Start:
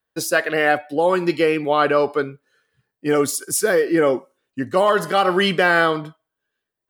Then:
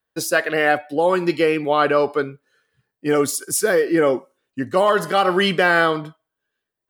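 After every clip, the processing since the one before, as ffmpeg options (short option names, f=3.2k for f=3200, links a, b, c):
-af anull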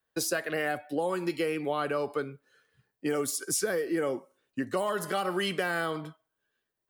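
-filter_complex "[0:a]acrossover=split=220|7400[a][b][c];[a]acompressor=threshold=-42dB:ratio=4[d];[b]acompressor=threshold=-28dB:ratio=4[e];[c]acompressor=threshold=-33dB:ratio=4[f];[d][e][f]amix=inputs=3:normalize=0,volume=-1.5dB"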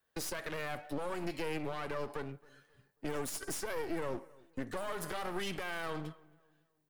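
-filter_complex "[0:a]alimiter=level_in=3.5dB:limit=-24dB:level=0:latency=1:release=147,volume=-3.5dB,aeval=exprs='clip(val(0),-1,0.00316)':c=same,asplit=2[a][b];[b]adelay=270,lowpass=f=2.1k:p=1,volume=-23dB,asplit=2[c][d];[d]adelay=270,lowpass=f=2.1k:p=1,volume=0.38,asplit=2[e][f];[f]adelay=270,lowpass=f=2.1k:p=1,volume=0.38[g];[a][c][e][g]amix=inputs=4:normalize=0,volume=1.5dB"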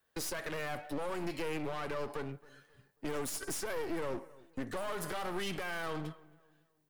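-af "aeval=exprs='0.0562*(cos(1*acos(clip(val(0)/0.0562,-1,1)))-cos(1*PI/2))+0.00398*(cos(5*acos(clip(val(0)/0.0562,-1,1)))-cos(5*PI/2))':c=same"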